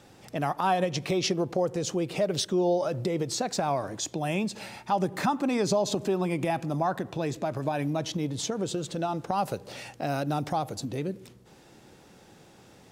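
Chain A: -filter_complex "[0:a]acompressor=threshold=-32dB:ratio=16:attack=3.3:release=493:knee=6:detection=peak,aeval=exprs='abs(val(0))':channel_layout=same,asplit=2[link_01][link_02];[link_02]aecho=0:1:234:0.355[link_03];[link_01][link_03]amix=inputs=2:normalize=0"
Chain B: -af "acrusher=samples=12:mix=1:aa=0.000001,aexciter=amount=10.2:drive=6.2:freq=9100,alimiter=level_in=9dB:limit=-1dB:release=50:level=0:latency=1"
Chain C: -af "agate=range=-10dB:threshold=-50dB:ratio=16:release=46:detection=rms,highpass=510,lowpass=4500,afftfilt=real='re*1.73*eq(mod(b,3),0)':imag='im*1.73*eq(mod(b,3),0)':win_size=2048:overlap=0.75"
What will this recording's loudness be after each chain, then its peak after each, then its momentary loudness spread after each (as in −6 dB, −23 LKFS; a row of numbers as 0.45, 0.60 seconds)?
−43.5, −15.5, −35.5 LKFS; −22.0, −1.0, −15.0 dBFS; 12, 5, 8 LU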